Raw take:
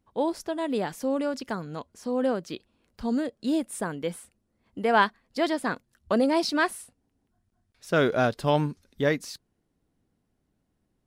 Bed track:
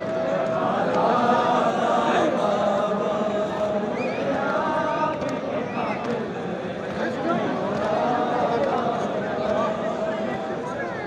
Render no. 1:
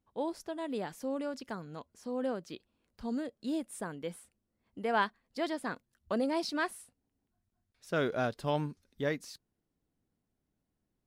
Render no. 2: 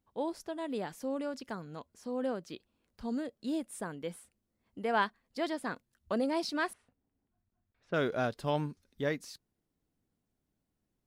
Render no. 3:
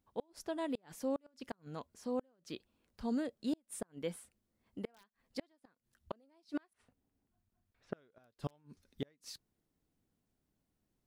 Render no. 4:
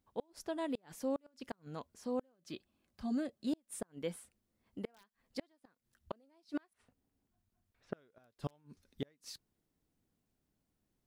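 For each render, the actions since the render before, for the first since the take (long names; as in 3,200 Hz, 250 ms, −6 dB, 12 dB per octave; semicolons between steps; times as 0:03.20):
level −8.5 dB
0:06.73–0:07.94: low-pass filter 2,100 Hz
wrap-around overflow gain 19 dB; gate with flip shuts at −26 dBFS, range −37 dB
0:02.34–0:03.47: notch comb filter 470 Hz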